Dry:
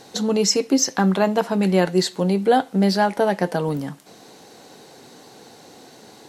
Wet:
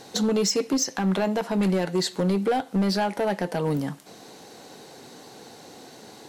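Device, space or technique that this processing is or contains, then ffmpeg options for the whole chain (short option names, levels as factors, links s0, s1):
limiter into clipper: -af "alimiter=limit=0.224:level=0:latency=1:release=176,asoftclip=type=hard:threshold=0.126"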